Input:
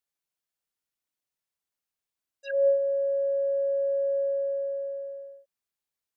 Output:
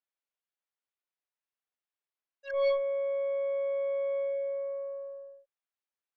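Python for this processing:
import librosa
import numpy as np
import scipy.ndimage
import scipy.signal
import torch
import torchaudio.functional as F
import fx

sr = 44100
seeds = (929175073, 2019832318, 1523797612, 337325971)

y = fx.bandpass_edges(x, sr, low_hz=430.0, high_hz=3000.0)
y = fx.cheby_harmonics(y, sr, harmonics=(2, 5, 6, 8), levels_db=(-22, -41, -17, -18), full_scale_db=-17.0)
y = y * 10.0 ** (-3.5 / 20.0)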